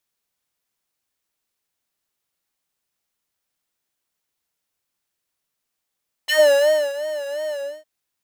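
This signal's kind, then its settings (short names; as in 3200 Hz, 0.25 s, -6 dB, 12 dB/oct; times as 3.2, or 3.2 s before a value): synth patch with vibrato D5, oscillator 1 square, interval -12 st, detune 18 cents, oscillator 2 level -10 dB, filter highpass, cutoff 440 Hz, Q 3, filter envelope 3 oct, filter decay 0.11 s, filter sustain 20%, attack 18 ms, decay 0.64 s, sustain -16 dB, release 0.30 s, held 1.26 s, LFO 2.8 Hz, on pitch 91 cents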